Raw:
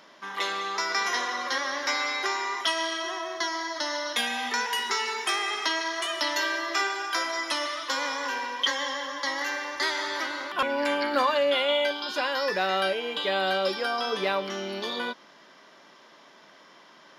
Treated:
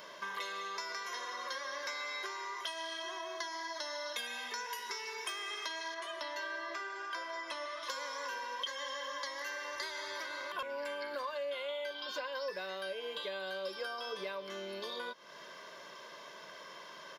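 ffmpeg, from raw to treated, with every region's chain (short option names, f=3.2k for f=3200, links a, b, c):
-filter_complex "[0:a]asettb=1/sr,asplit=3[a][b][c];[a]atrim=end=5.944[d];[b]atrim=start=5.94:end=7.83,asetpts=PTS-STARTPTS,afade=t=in:d=0.004:c=qsin,afade=t=out:st=1.886:d=0.004:c=qsin,lowpass=f=2.1k:p=1,equalizer=f=470:t=o:w=0.29:g=-4.5[e];[c]atrim=start=7.826[f];[d][e]acrossfade=d=0.004:c1=hsin:c2=qsin[g];[g][f]acrossfade=d=0.004:c1=qsin:c2=hsin,asettb=1/sr,asplit=3[h][i][j];[h]atrim=end=11.944[k];[i]atrim=start=11.94:end=12.51,asetpts=PTS-STARTPTS,afade=t=in:d=0.004:c=qsin,afade=t=out:st=0.566:d=0.004:c=qsin,equalizer=f=10k:w=1.5:g=-12,aecho=1:1:3.9:0.65,atrim=end_sample=25137[l];[j]atrim=start=12.506[m];[k][l]acrossfade=d=0.004:c1=hsin:c2=qsin[n];[n][m]acrossfade=d=0.004:c1=qsin:c2=hsin,acompressor=threshold=-42dB:ratio=6,highshelf=f=11k:g=9,aecho=1:1:1.9:0.59,volume=1dB"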